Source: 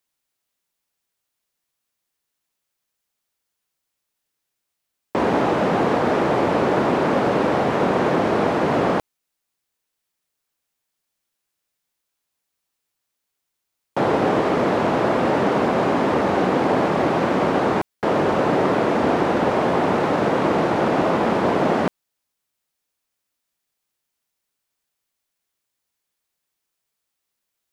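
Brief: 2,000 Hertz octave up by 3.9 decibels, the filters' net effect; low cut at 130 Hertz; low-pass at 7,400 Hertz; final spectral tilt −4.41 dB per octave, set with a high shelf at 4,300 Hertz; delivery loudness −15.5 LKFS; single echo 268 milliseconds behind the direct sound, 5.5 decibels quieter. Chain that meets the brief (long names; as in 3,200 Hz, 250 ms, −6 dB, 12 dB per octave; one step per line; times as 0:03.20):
high-pass filter 130 Hz
low-pass filter 7,400 Hz
parametric band 2,000 Hz +6 dB
high-shelf EQ 4,300 Hz −5 dB
single-tap delay 268 ms −5.5 dB
level +3 dB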